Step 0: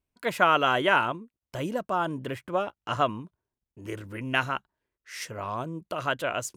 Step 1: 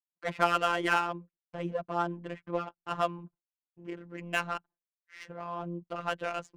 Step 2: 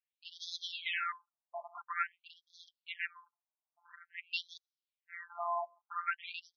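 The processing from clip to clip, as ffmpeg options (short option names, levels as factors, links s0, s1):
-af "adynamicsmooth=sensitivity=3:basefreq=1700,afftfilt=real='hypot(re,im)*cos(PI*b)':imag='0':win_size=1024:overlap=0.75,agate=range=0.0224:threshold=0.00282:ratio=3:detection=peak,volume=0.891"
-af "aeval=exprs='clip(val(0),-1,0.0335)':c=same,afftfilt=real='re*between(b*sr/1024,800*pow(4700/800,0.5+0.5*sin(2*PI*0.49*pts/sr))/1.41,800*pow(4700/800,0.5+0.5*sin(2*PI*0.49*pts/sr))*1.41)':imag='im*between(b*sr/1024,800*pow(4700/800,0.5+0.5*sin(2*PI*0.49*pts/sr))/1.41,800*pow(4700/800,0.5+0.5*sin(2*PI*0.49*pts/sr))*1.41)':win_size=1024:overlap=0.75,volume=1.78"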